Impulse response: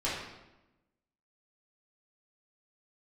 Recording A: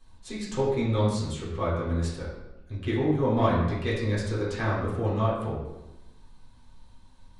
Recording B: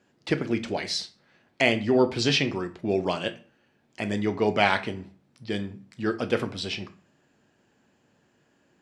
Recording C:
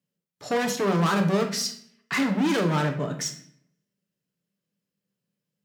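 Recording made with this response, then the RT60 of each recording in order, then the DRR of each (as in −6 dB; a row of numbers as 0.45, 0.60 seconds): A; 1.0, 0.40, 0.65 seconds; −8.5, 8.0, 3.0 decibels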